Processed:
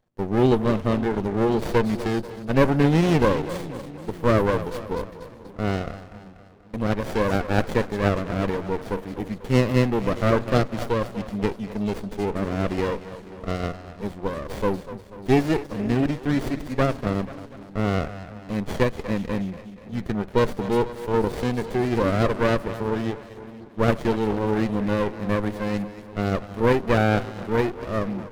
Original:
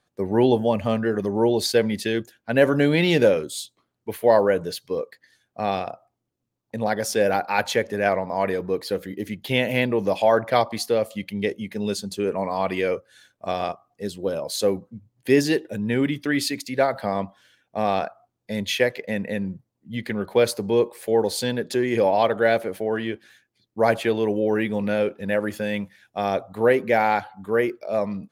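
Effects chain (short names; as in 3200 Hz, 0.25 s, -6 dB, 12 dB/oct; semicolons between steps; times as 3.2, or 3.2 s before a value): split-band echo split 360 Hz, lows 0.532 s, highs 0.242 s, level -13 dB; running maximum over 33 samples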